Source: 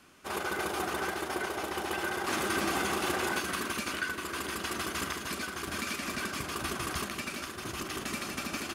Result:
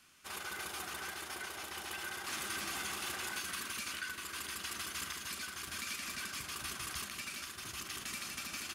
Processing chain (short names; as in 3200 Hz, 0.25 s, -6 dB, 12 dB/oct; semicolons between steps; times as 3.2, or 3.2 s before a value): in parallel at -1.5 dB: limiter -29 dBFS, peak gain reduction 11 dB; on the sum: passive tone stack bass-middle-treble 5-5-5